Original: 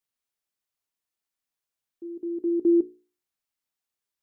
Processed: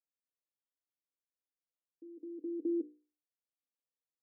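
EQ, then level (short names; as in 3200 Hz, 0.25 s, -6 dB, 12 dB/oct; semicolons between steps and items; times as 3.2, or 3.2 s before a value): double band-pass 380 Hz, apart 0.72 oct; -3.0 dB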